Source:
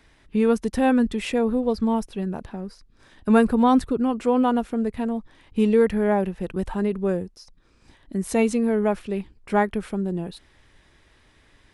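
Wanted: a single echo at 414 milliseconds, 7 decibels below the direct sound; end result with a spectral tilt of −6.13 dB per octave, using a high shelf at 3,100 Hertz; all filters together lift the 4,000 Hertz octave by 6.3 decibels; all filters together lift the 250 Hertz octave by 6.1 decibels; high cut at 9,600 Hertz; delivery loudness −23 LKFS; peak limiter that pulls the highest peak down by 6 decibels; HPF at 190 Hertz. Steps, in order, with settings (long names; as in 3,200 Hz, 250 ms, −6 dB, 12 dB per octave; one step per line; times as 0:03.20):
high-pass filter 190 Hz
low-pass filter 9,600 Hz
parametric band 250 Hz +8.5 dB
high-shelf EQ 3,100 Hz +4.5 dB
parametric band 4,000 Hz +5 dB
brickwall limiter −9.5 dBFS
single-tap delay 414 ms −7 dB
level −4 dB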